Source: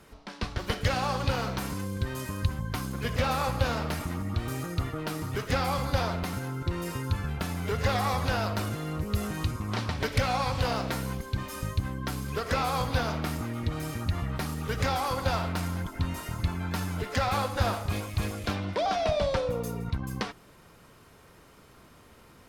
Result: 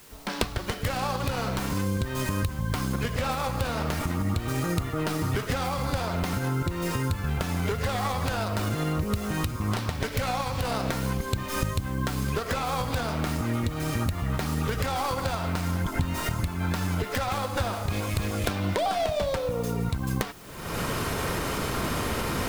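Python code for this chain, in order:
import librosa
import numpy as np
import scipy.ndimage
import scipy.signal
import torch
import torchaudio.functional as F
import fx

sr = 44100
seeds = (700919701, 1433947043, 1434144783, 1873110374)

p1 = fx.tracing_dist(x, sr, depth_ms=0.2)
p2 = fx.recorder_agc(p1, sr, target_db=-15.5, rise_db_per_s=50.0, max_gain_db=30)
p3 = fx.quant_dither(p2, sr, seeds[0], bits=6, dither='triangular')
p4 = p2 + (p3 * librosa.db_to_amplitude(-10.0))
y = p4 * librosa.db_to_amplitude(-6.0)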